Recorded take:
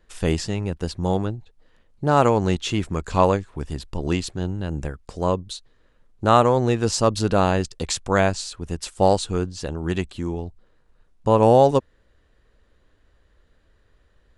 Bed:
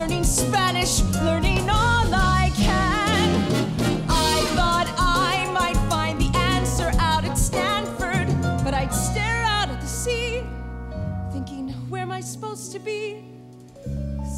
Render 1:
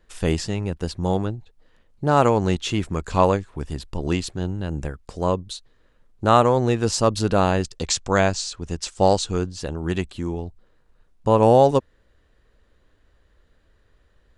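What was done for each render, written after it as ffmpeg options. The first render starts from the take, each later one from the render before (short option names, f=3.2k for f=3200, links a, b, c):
-filter_complex "[0:a]asettb=1/sr,asplit=3[a][b][c];[a]atrim=end=7.764[d];[b]atrim=start=7.76:end=9.48,asetpts=PTS-STARTPTS,afade=t=in:d=0.004:c=qsin,afade=t=out:st=1.716:d=0.004:c=qsin,lowpass=f=6.7k:t=q:w=1.6[e];[c]atrim=start=9.476[f];[d][e]acrossfade=d=0.004:c1=hsin:c2=qsin[g];[g][f]acrossfade=d=0.004:c1=qsin:c2=hsin"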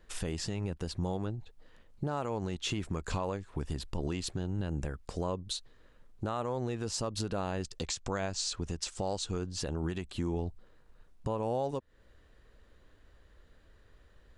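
-af "acompressor=threshold=-28dB:ratio=3,alimiter=limit=-23.5dB:level=0:latency=1:release=134"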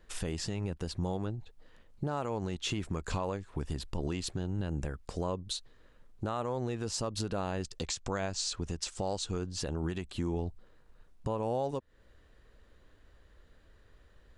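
-af anull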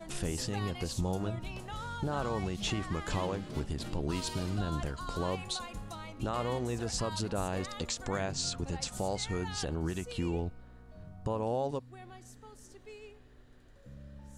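-filter_complex "[1:a]volume=-21.5dB[a];[0:a][a]amix=inputs=2:normalize=0"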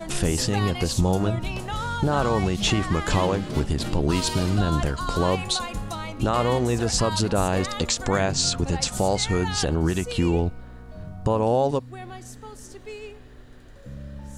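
-af "volume=11.5dB"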